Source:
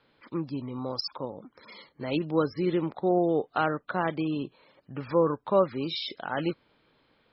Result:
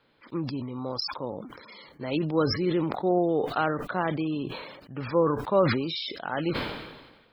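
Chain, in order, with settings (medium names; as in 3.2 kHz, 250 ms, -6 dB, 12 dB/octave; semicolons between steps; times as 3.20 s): decay stretcher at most 47 dB/s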